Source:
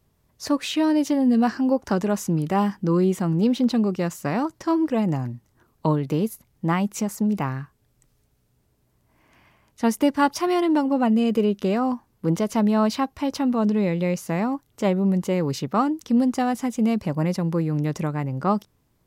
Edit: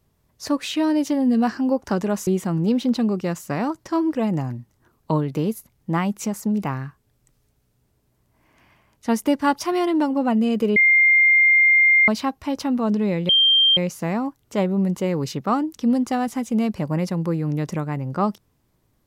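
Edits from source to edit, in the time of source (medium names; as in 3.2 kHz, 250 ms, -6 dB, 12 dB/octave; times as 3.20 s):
2.27–3.02 s: delete
11.51–12.83 s: bleep 2.11 kHz -11.5 dBFS
14.04 s: add tone 3.17 kHz -12.5 dBFS 0.48 s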